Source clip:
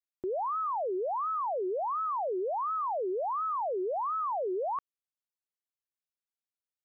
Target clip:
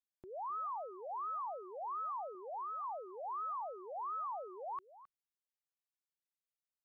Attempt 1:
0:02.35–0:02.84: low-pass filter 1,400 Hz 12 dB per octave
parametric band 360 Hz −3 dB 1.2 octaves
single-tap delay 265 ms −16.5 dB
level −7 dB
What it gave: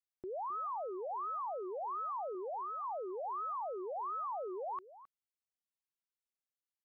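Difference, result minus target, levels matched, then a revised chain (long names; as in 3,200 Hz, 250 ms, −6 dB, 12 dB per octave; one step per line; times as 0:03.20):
500 Hz band +3.5 dB
0:02.35–0:02.84: low-pass filter 1,400 Hz 12 dB per octave
parametric band 360 Hz −13 dB 1.2 octaves
single-tap delay 265 ms −16.5 dB
level −7 dB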